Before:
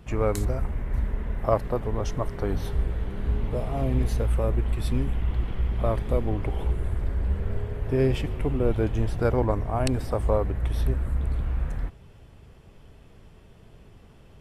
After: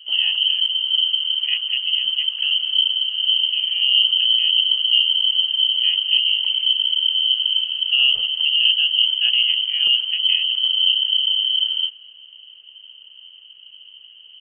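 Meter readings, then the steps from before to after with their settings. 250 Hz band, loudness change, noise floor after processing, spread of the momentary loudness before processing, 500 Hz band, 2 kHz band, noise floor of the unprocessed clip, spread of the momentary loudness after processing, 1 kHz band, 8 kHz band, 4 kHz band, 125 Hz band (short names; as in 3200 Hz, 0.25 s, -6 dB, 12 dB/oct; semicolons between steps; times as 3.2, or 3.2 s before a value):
under -35 dB, +11.5 dB, -45 dBFS, 5 LU, under -30 dB, +16.5 dB, -51 dBFS, 4 LU, under -20 dB, under -35 dB, +36.5 dB, under -40 dB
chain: EQ curve 150 Hz 0 dB, 240 Hz +9 dB, 650 Hz -17 dB, 1400 Hz -13 dB; speakerphone echo 0.2 s, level -19 dB; inverted band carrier 3100 Hz; gain +4 dB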